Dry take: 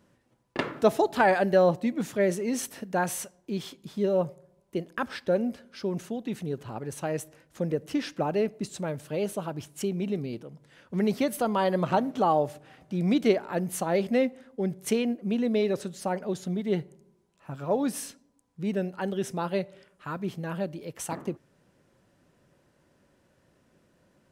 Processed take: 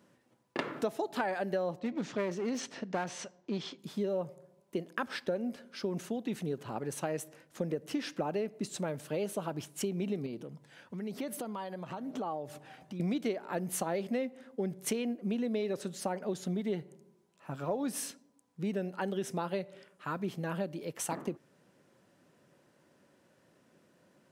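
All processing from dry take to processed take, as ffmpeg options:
ffmpeg -i in.wav -filter_complex "[0:a]asettb=1/sr,asplit=3[link_01][link_02][link_03];[link_01]atrim=end=1.794[link_04];[link_02]atrim=start=1.79:end=3.79,asetpts=PTS-STARTPTS,afade=type=in:duration=0.004:curve=qsin,afade=type=out:start_time=1.996:duration=0.004:curve=qsin,lowpass=frequency=5900:width=0.5412,lowpass=frequency=5900:width=1.3066,aeval=exprs='clip(val(0),-1,0.0266)':channel_layout=same[link_05];[link_03]atrim=start=3.786[link_06];[link_04][link_05]acrossfade=duration=0.004:curve1=hsin:curve2=qsin[link_07];[link_07][link_06]acrossfade=duration=0.004:curve1=qsin:curve2=hsin,asettb=1/sr,asplit=3[link_08][link_09][link_10];[link_08]atrim=end=10.264[link_11];[link_09]atrim=start=10.26:end=13,asetpts=PTS-STARTPTS,afade=type=in:duration=0.004:curve=qsin,afade=type=out:start_time=2.736:duration=0.004:curve=qsin,acompressor=threshold=-38dB:ratio=5:attack=3.2:release=140:knee=1:detection=peak,aphaser=in_gain=1:out_gain=1:delay=1.3:decay=0.34:speed=1:type=sinusoidal[link_12];[link_10]atrim=start=12.996[link_13];[link_11][link_12]acrossfade=duration=0.004:curve1=hsin:curve2=qsin[link_14];[link_14][link_13]acrossfade=duration=0.004:curve1=qsin:curve2=hsin,highpass=150,acompressor=threshold=-30dB:ratio=6" out.wav

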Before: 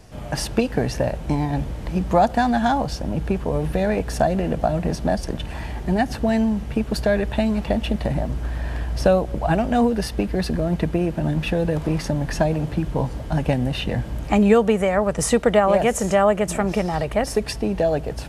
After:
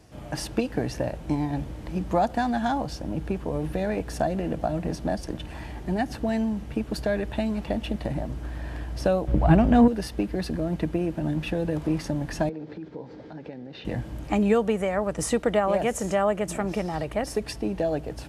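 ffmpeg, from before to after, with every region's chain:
ffmpeg -i in.wav -filter_complex "[0:a]asettb=1/sr,asplit=3[link_01][link_02][link_03];[link_01]atrim=end=9.274[link_04];[link_02]atrim=start=9.27:end=9.88,asetpts=PTS-STARTPTS,afade=type=in:duration=0.004:curve=qsin,afade=type=out:start_time=0.606:duration=0.004:curve=qsin,bass=frequency=250:gain=8,treble=frequency=4000:gain=-7,acontrast=35[link_05];[link_03]atrim=start=9.876[link_06];[link_04][link_05]acrossfade=duration=0.004:curve1=hsin:curve2=qsin[link_07];[link_07][link_06]acrossfade=duration=0.004:curve1=qsin:curve2=hsin,asettb=1/sr,asplit=3[link_08][link_09][link_10];[link_08]atrim=end=12.494[link_11];[link_09]atrim=start=12.49:end=13.85,asetpts=PTS-STARTPTS,afade=type=in:duration=0.004:curve=qsin,afade=type=out:start_time=1.356:duration=0.004:curve=qsin,acompressor=threshold=-26dB:ratio=12:attack=3.2:release=140:knee=1:detection=peak,highpass=200,equalizer=frequency=450:width_type=q:width=4:gain=7,equalizer=frequency=660:width_type=q:width=4:gain=-5,equalizer=frequency=1100:width_type=q:width=4:gain=-6,equalizer=frequency=2900:width_type=q:width=4:gain=-8,lowpass=frequency=4800:width=0.5412,lowpass=frequency=4800:width=1.3066[link_12];[link_10]atrim=start=13.846[link_13];[link_11][link_12]acrossfade=duration=0.004:curve1=hsin:curve2=qsin[link_14];[link_14][link_13]acrossfade=duration=0.004:curve1=qsin:curve2=hsin,highpass=46,equalizer=frequency=310:width_type=o:width=0.21:gain=7.5,volume=-6.5dB" out.wav

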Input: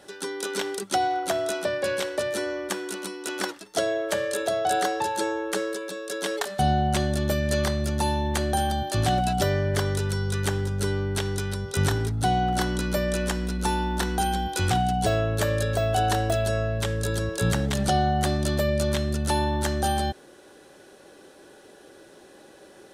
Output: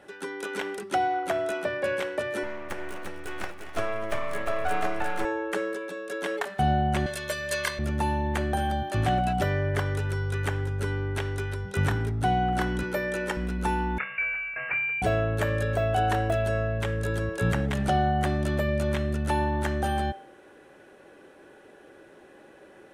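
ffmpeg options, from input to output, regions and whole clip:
ffmpeg -i in.wav -filter_complex "[0:a]asettb=1/sr,asplit=3[link_01][link_02][link_03];[link_01]atrim=end=2.434[link_04];[link_02]atrim=start=2.43:end=5.25,asetpts=PTS-STARTPTS,afade=type=in:duration=0.004:curve=qsin,afade=type=out:start_time=2.816:duration=0.004:curve=qsin,aeval=exprs='max(val(0),0)':channel_layout=same,asplit=2[link_05][link_06];[link_06]adelay=12,volume=-12.5dB[link_07];[link_05][link_07]amix=inputs=2:normalize=0,atrim=end_sample=124362,aecho=1:1:253|351|881:0.178|0.501|0.158,atrim=end_sample=124362[link_08];[link_03]atrim=start=5.246[link_09];[link_04][link_08]acrossfade=duration=0.004:curve1=hsin:curve2=qsin[link_10];[link_10][link_09]acrossfade=duration=0.004:curve1=qsin:curve2=hsin,asettb=1/sr,asplit=3[link_11][link_12][link_13];[link_11]atrim=end=7.064[link_14];[link_12]atrim=start=7.06:end=7.79,asetpts=PTS-STARTPTS,afade=type=in:duration=0.004:curve=qsin,afade=type=out:start_time=0.726:duration=0.004:curve=qsin,highpass=frequency=270:poles=1,tiltshelf=frequency=1300:gain=-9,aecho=1:1:1.9:0.84,atrim=end_sample=32193[link_15];[link_13]atrim=start=7.786[link_16];[link_14][link_15]acrossfade=duration=0.004:curve1=hsin:curve2=qsin[link_17];[link_17][link_16]acrossfade=duration=0.004:curve1=qsin:curve2=hsin,asettb=1/sr,asplit=3[link_18][link_19][link_20];[link_18]atrim=end=12.834[link_21];[link_19]atrim=start=12.83:end=13.37,asetpts=PTS-STARTPTS,afade=type=in:duration=0.004:curve=qsin,afade=type=out:start_time=0.536:duration=0.004:curve=qsin,highpass=160,aecho=1:1:2.2:0.52,atrim=end_sample=23814[link_22];[link_20]atrim=start=13.366[link_23];[link_21][link_22]acrossfade=duration=0.004:curve1=hsin:curve2=qsin[link_24];[link_24][link_23]acrossfade=duration=0.004:curve1=qsin:curve2=hsin,asettb=1/sr,asplit=3[link_25][link_26][link_27];[link_25]atrim=end=13.984[link_28];[link_26]atrim=start=13.98:end=15.02,asetpts=PTS-STARTPTS,afade=type=in:duration=0.004:curve=qsin,afade=type=out:start_time=1.036:duration=0.004:curve=qsin,highpass=710,lowpass=frequency=2600:width_type=q:width=0.5098,lowpass=frequency=2600:width_type=q:width=0.6013,lowpass=frequency=2600:width_type=q:width=0.9,lowpass=frequency=2600:width_type=q:width=2.563,afreqshift=-3100[link_29];[link_27]atrim=start=15.016[link_30];[link_28][link_29]acrossfade=duration=0.004:curve1=hsin:curve2=qsin[link_31];[link_31][link_30]acrossfade=duration=0.004:curve1=qsin:curve2=hsin,highshelf=frequency=3200:width_type=q:width=1.5:gain=-9,bandreject=frequency=195.5:width_type=h:width=4,bandreject=frequency=391:width_type=h:width=4,bandreject=frequency=586.5:width_type=h:width=4,bandreject=frequency=782:width_type=h:width=4,bandreject=frequency=977.5:width_type=h:width=4,bandreject=frequency=1173:width_type=h:width=4,bandreject=frequency=1368.5:width_type=h:width=4,bandreject=frequency=1564:width_type=h:width=4,bandreject=frequency=1759.5:width_type=h:width=4,bandreject=frequency=1955:width_type=h:width=4,bandreject=frequency=2150.5:width_type=h:width=4,bandreject=frequency=2346:width_type=h:width=4,bandreject=frequency=2541.5:width_type=h:width=4,bandreject=frequency=2737:width_type=h:width=4,bandreject=frequency=2932.5:width_type=h:width=4,bandreject=frequency=3128:width_type=h:width=4,bandreject=frequency=3323.5:width_type=h:width=4,bandreject=frequency=3519:width_type=h:width=4,bandreject=frequency=3714.5:width_type=h:width=4,bandreject=frequency=3910:width_type=h:width=4,bandreject=frequency=4105.5:width_type=h:width=4,bandreject=frequency=4301:width_type=h:width=4,bandreject=frequency=4496.5:width_type=h:width=4,bandreject=frequency=4692:width_type=h:width=4,bandreject=frequency=4887.5:width_type=h:width=4,bandreject=frequency=5083:width_type=h:width=4,bandreject=frequency=5278.5:width_type=h:width=4,bandreject=frequency=5474:width_type=h:width=4,bandreject=frequency=5669.5:width_type=h:width=4,bandreject=frequency=5865:width_type=h:width=4,bandreject=frequency=6060.5:width_type=h:width=4,volume=-1.5dB" out.wav

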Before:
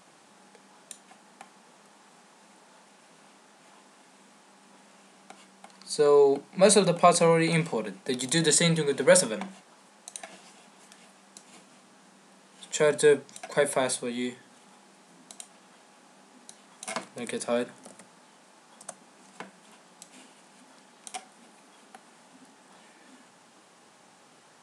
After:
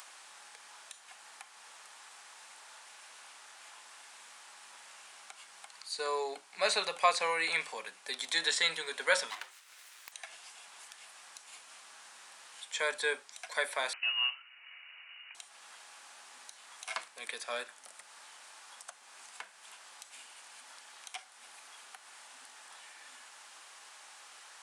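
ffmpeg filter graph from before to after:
ffmpeg -i in.wav -filter_complex "[0:a]asettb=1/sr,asplit=3[link_01][link_02][link_03];[link_01]atrim=end=9.304[link_04];[link_02]atrim=start=9.3:end=10.12,asetpts=PTS-STARTPTS,afade=type=in:duration=0.004:curve=qsin,afade=type=out:start_time=0.816:duration=0.004:curve=qsin,highpass=240,aeval=exprs='abs(val(0))':channel_layout=same[link_05];[link_03]atrim=start=10.116[link_06];[link_04][link_05]acrossfade=duration=0.004:curve1=hsin:curve2=qsin[link_07];[link_07][link_06]acrossfade=duration=0.004:curve1=qsin:curve2=hsin,asettb=1/sr,asplit=3[link_08][link_09][link_10];[link_08]atrim=end=13.934[link_11];[link_09]atrim=start=13.93:end=15.35,asetpts=PTS-STARTPTS,afade=type=in:duration=0.004:curve=qsin,afade=type=out:start_time=1.416:duration=0.004:curve=qsin,acrusher=bits=2:mode=log:mix=0:aa=0.000001,lowpass=frequency=2600:width_type=q:width=0.5098,lowpass=frequency=2600:width_type=q:width=0.6013,lowpass=frequency=2600:width_type=q:width=0.9,lowpass=frequency=2600:width_type=q:width=2.563,afreqshift=-3100[link_12];[link_10]atrim=start=15.346[link_13];[link_11][link_12]acrossfade=duration=0.004:curve1=hsin:curve2=qsin[link_14];[link_14][link_13]acrossfade=duration=0.004:curve1=qsin:curve2=hsin,acrossover=split=5000[link_15][link_16];[link_16]acompressor=threshold=-45dB:ratio=4:attack=1:release=60[link_17];[link_15][link_17]amix=inputs=2:normalize=0,highpass=1200,acompressor=mode=upward:threshold=-45dB:ratio=2.5" out.wav

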